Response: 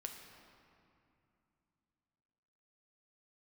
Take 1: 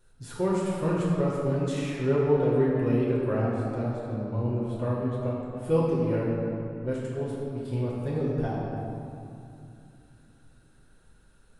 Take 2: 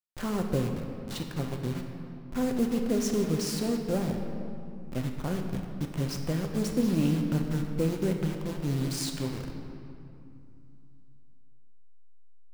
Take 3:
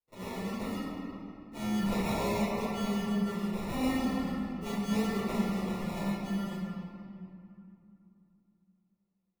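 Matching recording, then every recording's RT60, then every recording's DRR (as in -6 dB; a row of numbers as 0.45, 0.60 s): 2; 2.6, 2.7, 2.6 s; -7.0, 2.5, -12.0 dB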